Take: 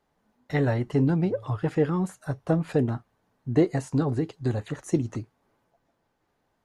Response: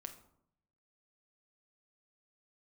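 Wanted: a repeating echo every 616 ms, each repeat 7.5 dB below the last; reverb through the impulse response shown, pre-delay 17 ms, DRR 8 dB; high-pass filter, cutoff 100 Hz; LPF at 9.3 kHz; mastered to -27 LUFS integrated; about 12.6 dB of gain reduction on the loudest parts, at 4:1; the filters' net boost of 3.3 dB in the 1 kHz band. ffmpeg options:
-filter_complex "[0:a]highpass=100,lowpass=9300,equalizer=f=1000:t=o:g=4.5,acompressor=threshold=0.0282:ratio=4,aecho=1:1:616|1232|1848|2464|3080:0.422|0.177|0.0744|0.0312|0.0131,asplit=2[s0][s1];[1:a]atrim=start_sample=2205,adelay=17[s2];[s1][s2]afir=irnorm=-1:irlink=0,volume=0.631[s3];[s0][s3]amix=inputs=2:normalize=0,volume=2.37"

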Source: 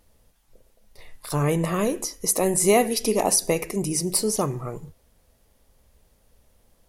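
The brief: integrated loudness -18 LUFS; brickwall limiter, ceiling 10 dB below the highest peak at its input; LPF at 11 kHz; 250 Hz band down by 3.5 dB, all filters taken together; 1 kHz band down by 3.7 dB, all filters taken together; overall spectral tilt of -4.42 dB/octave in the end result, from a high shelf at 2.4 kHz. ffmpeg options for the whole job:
-af "lowpass=11000,equalizer=f=250:t=o:g=-5,equalizer=f=1000:t=o:g=-4.5,highshelf=f=2400:g=-4,volume=3.76,alimiter=limit=0.422:level=0:latency=1"

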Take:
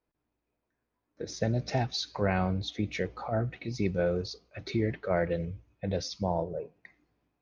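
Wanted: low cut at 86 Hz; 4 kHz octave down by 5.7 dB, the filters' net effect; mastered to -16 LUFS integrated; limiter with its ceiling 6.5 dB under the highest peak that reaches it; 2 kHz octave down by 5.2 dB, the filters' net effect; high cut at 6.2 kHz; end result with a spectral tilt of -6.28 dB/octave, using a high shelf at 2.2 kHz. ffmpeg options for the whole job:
-af "highpass=86,lowpass=6200,equalizer=f=2000:t=o:g=-7,highshelf=f=2200:g=3,equalizer=f=4000:t=o:g=-7,volume=8.91,alimiter=limit=0.668:level=0:latency=1"

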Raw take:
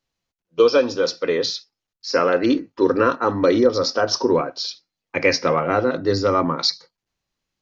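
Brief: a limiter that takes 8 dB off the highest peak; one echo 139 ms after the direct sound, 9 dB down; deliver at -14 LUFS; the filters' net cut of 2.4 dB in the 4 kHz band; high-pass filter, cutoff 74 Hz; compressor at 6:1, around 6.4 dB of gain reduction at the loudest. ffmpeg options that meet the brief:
-af "highpass=74,equalizer=f=4000:t=o:g=-3,acompressor=threshold=0.141:ratio=6,alimiter=limit=0.178:level=0:latency=1,aecho=1:1:139:0.355,volume=3.76"

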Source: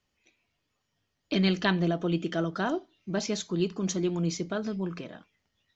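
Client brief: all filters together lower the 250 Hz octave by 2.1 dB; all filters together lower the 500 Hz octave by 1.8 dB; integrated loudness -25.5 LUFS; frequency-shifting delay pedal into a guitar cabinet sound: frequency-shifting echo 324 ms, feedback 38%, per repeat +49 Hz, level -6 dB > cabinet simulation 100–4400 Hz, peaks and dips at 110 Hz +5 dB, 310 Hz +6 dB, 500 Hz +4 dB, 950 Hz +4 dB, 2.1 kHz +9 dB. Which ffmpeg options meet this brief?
-filter_complex "[0:a]equalizer=f=250:t=o:g=-5,equalizer=f=500:t=o:g=-4.5,asplit=6[s0][s1][s2][s3][s4][s5];[s1]adelay=324,afreqshift=49,volume=0.501[s6];[s2]adelay=648,afreqshift=98,volume=0.191[s7];[s3]adelay=972,afreqshift=147,volume=0.0724[s8];[s4]adelay=1296,afreqshift=196,volume=0.0275[s9];[s5]adelay=1620,afreqshift=245,volume=0.0105[s10];[s0][s6][s7][s8][s9][s10]amix=inputs=6:normalize=0,highpass=100,equalizer=f=110:t=q:w=4:g=5,equalizer=f=310:t=q:w=4:g=6,equalizer=f=500:t=q:w=4:g=4,equalizer=f=950:t=q:w=4:g=4,equalizer=f=2100:t=q:w=4:g=9,lowpass=f=4400:w=0.5412,lowpass=f=4400:w=1.3066,volume=1.68"

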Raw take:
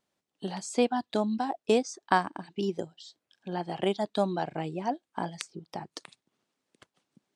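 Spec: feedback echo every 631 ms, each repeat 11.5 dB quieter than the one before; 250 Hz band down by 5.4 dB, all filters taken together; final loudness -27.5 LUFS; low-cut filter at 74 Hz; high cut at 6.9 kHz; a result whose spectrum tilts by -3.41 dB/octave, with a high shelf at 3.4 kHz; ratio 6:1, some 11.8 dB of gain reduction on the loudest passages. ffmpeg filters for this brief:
-af "highpass=74,lowpass=6900,equalizer=f=250:t=o:g=-7,highshelf=f=3400:g=7.5,acompressor=threshold=0.0316:ratio=6,aecho=1:1:631|1262|1893:0.266|0.0718|0.0194,volume=3.16"

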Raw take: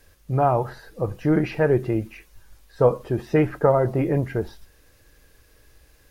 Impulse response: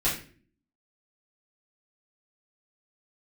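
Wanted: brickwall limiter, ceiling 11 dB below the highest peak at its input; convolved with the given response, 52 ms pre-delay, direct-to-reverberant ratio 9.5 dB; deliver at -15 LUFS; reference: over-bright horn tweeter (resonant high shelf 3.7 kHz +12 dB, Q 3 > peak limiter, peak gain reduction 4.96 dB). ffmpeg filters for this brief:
-filter_complex "[0:a]alimiter=limit=0.141:level=0:latency=1,asplit=2[s0][s1];[1:a]atrim=start_sample=2205,adelay=52[s2];[s1][s2]afir=irnorm=-1:irlink=0,volume=0.1[s3];[s0][s3]amix=inputs=2:normalize=0,highshelf=f=3700:t=q:w=3:g=12,volume=5.31,alimiter=limit=0.596:level=0:latency=1"

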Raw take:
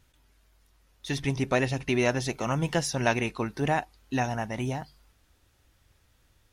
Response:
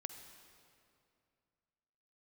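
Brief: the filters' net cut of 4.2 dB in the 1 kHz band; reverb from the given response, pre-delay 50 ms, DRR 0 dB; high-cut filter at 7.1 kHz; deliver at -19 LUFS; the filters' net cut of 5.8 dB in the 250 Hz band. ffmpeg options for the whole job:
-filter_complex "[0:a]lowpass=7100,equalizer=f=250:t=o:g=-7.5,equalizer=f=1000:t=o:g=-5.5,asplit=2[s0][s1];[1:a]atrim=start_sample=2205,adelay=50[s2];[s1][s2]afir=irnorm=-1:irlink=0,volume=1.41[s3];[s0][s3]amix=inputs=2:normalize=0,volume=2.99"

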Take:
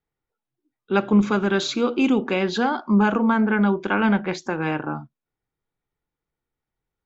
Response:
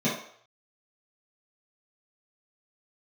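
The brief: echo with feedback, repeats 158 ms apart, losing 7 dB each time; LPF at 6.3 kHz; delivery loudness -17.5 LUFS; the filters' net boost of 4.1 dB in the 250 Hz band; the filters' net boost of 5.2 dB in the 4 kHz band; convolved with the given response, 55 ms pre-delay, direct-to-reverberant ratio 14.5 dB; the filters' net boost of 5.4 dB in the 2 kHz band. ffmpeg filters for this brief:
-filter_complex "[0:a]lowpass=6300,equalizer=f=250:t=o:g=5,equalizer=f=2000:t=o:g=7,equalizer=f=4000:t=o:g=4.5,aecho=1:1:158|316|474|632|790:0.447|0.201|0.0905|0.0407|0.0183,asplit=2[s0][s1];[1:a]atrim=start_sample=2205,adelay=55[s2];[s1][s2]afir=irnorm=-1:irlink=0,volume=0.0473[s3];[s0][s3]amix=inputs=2:normalize=0,volume=0.75"

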